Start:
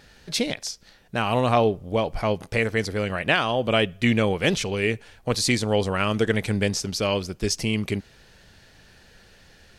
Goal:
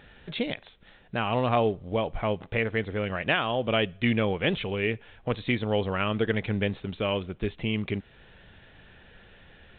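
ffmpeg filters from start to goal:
-filter_complex "[0:a]asplit=2[a][b];[b]acompressor=threshold=-37dB:ratio=6,volume=-1.5dB[c];[a][c]amix=inputs=2:normalize=0,volume=-5dB" -ar 8000 -c:a pcm_mulaw

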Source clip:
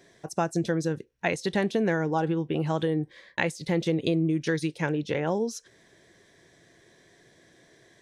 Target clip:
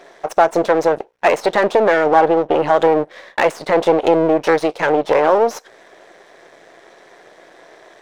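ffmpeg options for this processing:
-filter_complex "[0:a]aeval=exprs='max(val(0),0)':c=same,asplit=2[a][b];[b]highpass=f=720:p=1,volume=19dB,asoftclip=type=tanh:threshold=-9dB[c];[a][c]amix=inputs=2:normalize=0,lowpass=f=4.4k:p=1,volume=-6dB,equalizer=f=620:w=0.61:g=14"

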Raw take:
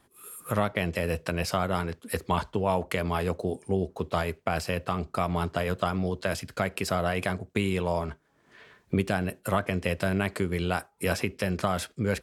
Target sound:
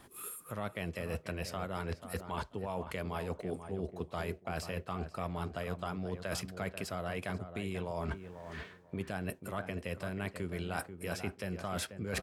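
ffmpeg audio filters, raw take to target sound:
-filter_complex "[0:a]areverse,acompressor=threshold=-41dB:ratio=12,areverse,asplit=2[a][b];[b]adelay=488,lowpass=f=1.6k:p=1,volume=-9dB,asplit=2[c][d];[d]adelay=488,lowpass=f=1.6k:p=1,volume=0.21,asplit=2[e][f];[f]adelay=488,lowpass=f=1.6k:p=1,volume=0.21[g];[a][c][e][g]amix=inputs=4:normalize=0,volume=6.5dB"

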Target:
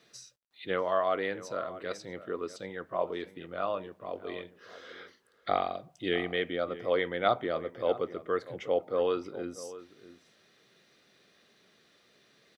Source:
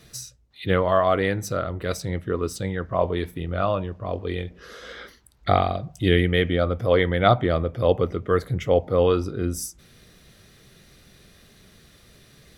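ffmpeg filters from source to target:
-filter_complex "[0:a]highpass=300,lowpass=5.3k,acrusher=bits=11:mix=0:aa=0.000001,asplit=2[a][b];[b]adelay=641.4,volume=-15dB,highshelf=f=4k:g=-14.4[c];[a][c]amix=inputs=2:normalize=0,volume=-8dB"

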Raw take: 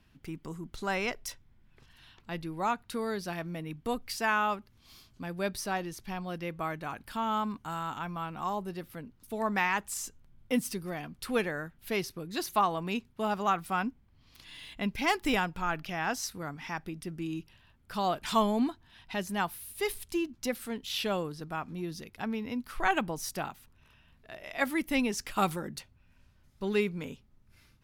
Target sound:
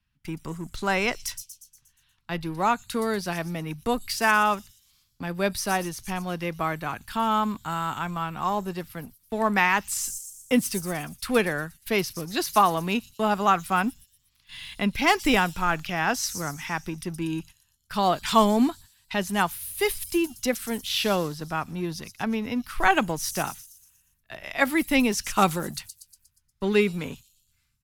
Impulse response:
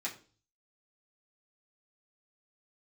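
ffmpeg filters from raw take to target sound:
-filter_complex "[0:a]agate=range=-18dB:threshold=-49dB:ratio=16:detection=peak,acrossover=split=220|830|5200[a][b][c][d];[b]aeval=exprs='sgn(val(0))*max(abs(val(0))-0.00237,0)':c=same[e];[d]asplit=8[f][g][h][i][j][k][l][m];[g]adelay=119,afreqshift=110,volume=-3.5dB[n];[h]adelay=238,afreqshift=220,volume=-9.2dB[o];[i]adelay=357,afreqshift=330,volume=-14.9dB[p];[j]adelay=476,afreqshift=440,volume=-20.5dB[q];[k]adelay=595,afreqshift=550,volume=-26.2dB[r];[l]adelay=714,afreqshift=660,volume=-31.9dB[s];[m]adelay=833,afreqshift=770,volume=-37.6dB[t];[f][n][o][p][q][r][s][t]amix=inputs=8:normalize=0[u];[a][e][c][u]amix=inputs=4:normalize=0,volume=7.5dB"

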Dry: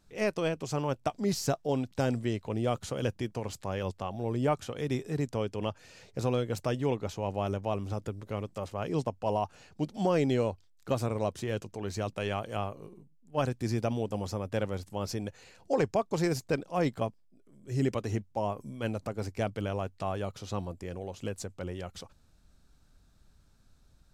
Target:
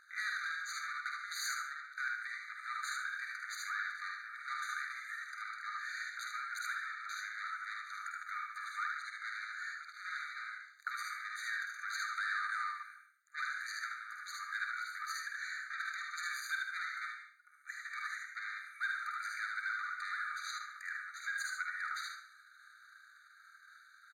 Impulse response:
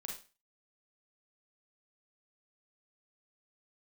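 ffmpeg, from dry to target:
-filter_complex "[0:a]aeval=exprs='if(lt(val(0),0),0.447*val(0),val(0))':c=same,equalizer=f=1.6k:w=2.5:g=10.5,asplit=2[a][b];[b]alimiter=level_in=1dB:limit=-24dB:level=0:latency=1,volume=-1dB,volume=0.5dB[c];[a][c]amix=inputs=2:normalize=0,highpass=240,highshelf=f=3.1k:g=-11.5,asoftclip=type=tanh:threshold=-28.5dB,aecho=1:1:49|76:0.531|0.631,asplit=2[d][e];[1:a]atrim=start_sample=2205,asetrate=31752,aresample=44100[f];[e][f]afir=irnorm=-1:irlink=0,volume=1.5dB[g];[d][g]amix=inputs=2:normalize=0,acompressor=threshold=-32dB:ratio=3,afftfilt=real='re*eq(mod(floor(b*sr/1024/1200),2),1)':imag='im*eq(mod(floor(b*sr/1024/1200),2),1)':win_size=1024:overlap=0.75,volume=3dB"

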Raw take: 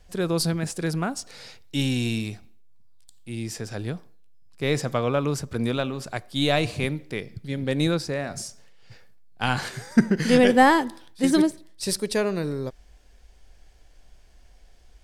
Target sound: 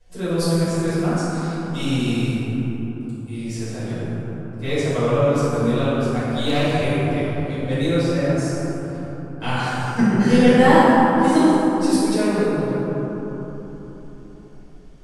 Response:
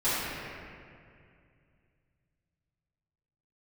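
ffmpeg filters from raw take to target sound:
-filter_complex "[1:a]atrim=start_sample=2205,asetrate=24696,aresample=44100[a];[0:a][a]afir=irnorm=-1:irlink=0,asettb=1/sr,asplit=3[b][c][d];[b]atrim=end=6.134[e];[c]atrim=start=6.13:end=6.74,asetpts=PTS-STARTPTS,afade=t=in:d=0.004:c=qsin,afade=t=out:st=0.606:d=0.004:c=qsin,aeval=exprs='clip(val(0),-1,0.596)':c=same[f];[d]atrim=start=6.736[g];[e][f]acrossfade=d=0.004:c1=hsin:c2=qsin[h];[h][g]acrossfade=d=0.004:c1=qsin:c2=hsin,volume=-12.5dB"

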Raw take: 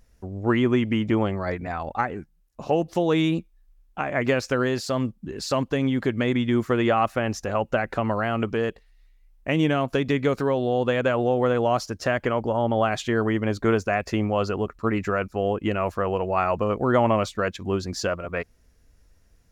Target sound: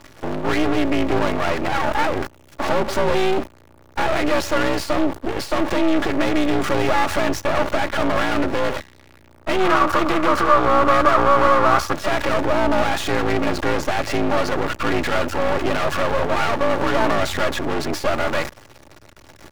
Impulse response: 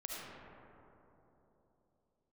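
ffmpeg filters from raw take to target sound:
-filter_complex "[0:a]aeval=exprs='val(0)+0.5*0.0355*sgn(val(0))':c=same,asplit=2[a][b];[b]highpass=f=720:p=1,volume=32dB,asoftclip=type=tanh:threshold=-7dB[c];[a][c]amix=inputs=2:normalize=0,lowpass=f=1.5k:p=1,volume=-6dB,aecho=1:1:3.7:0.56,afreqshift=58,aeval=exprs='max(val(0),0)':c=same,agate=range=-15dB:threshold=-22dB:ratio=16:detection=peak,asettb=1/sr,asplit=3[d][e][f];[d]atrim=end=9.604[g];[e]atrim=start=9.6:end=11.93,asetpts=PTS-STARTPTS,afade=t=in:d=0.004:c=qsin,afade=t=out:st=2.326:d=0.004:c=qsin,equalizer=f=1.2k:w=2.9:g=13[h];[f]atrim=start=11.926[i];[g][h]acrossfade=d=0.004:c1=hsin:c2=qsin[j];[j][i]acrossfade=d=0.004:c1=qsin:c2=hsin,volume=-2dB"

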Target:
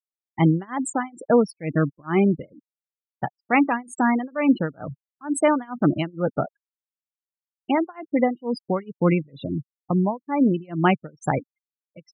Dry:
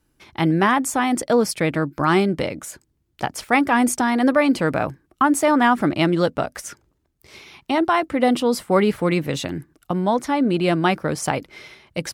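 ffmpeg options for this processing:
-af "afftfilt=real='re*gte(hypot(re,im),0.126)':imag='im*gte(hypot(re,im),0.126)':win_size=1024:overlap=0.75,tremolo=f=2.2:d=0.98,equalizer=f=150:t=o:w=1.1:g=4.5"

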